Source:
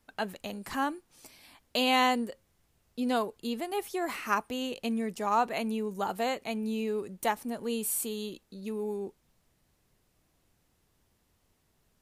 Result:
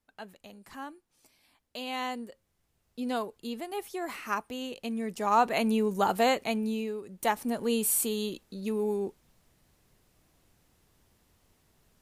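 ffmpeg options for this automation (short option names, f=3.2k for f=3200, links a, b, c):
-af "volume=17dB,afade=t=in:st=1.85:d=1.16:silence=0.398107,afade=t=in:st=4.92:d=0.84:silence=0.354813,afade=t=out:st=6.34:d=0.67:silence=0.237137,afade=t=in:st=7.01:d=0.47:silence=0.281838"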